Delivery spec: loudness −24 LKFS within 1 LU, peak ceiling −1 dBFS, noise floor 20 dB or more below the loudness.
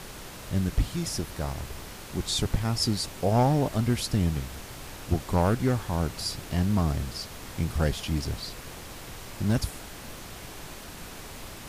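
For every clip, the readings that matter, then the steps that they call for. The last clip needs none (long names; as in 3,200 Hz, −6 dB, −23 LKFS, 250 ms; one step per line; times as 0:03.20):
share of clipped samples 0.5%; peaks flattened at −15.5 dBFS; background noise floor −43 dBFS; target noise floor −49 dBFS; integrated loudness −28.5 LKFS; sample peak −15.5 dBFS; target loudness −24.0 LKFS
→ clipped peaks rebuilt −15.5 dBFS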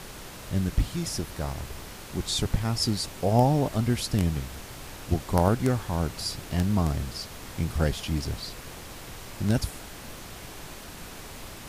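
share of clipped samples 0.0%; background noise floor −43 dBFS; target noise floor −48 dBFS
→ noise reduction from a noise print 6 dB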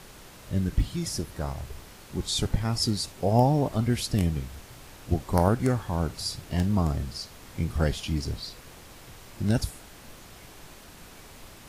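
background noise floor −48 dBFS; integrated loudness −28.0 LKFS; sample peak −6.5 dBFS; target loudness −24.0 LKFS
→ level +4 dB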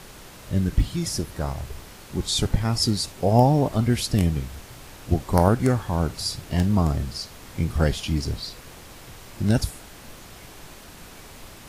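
integrated loudness −24.0 LKFS; sample peak −2.5 dBFS; background noise floor −44 dBFS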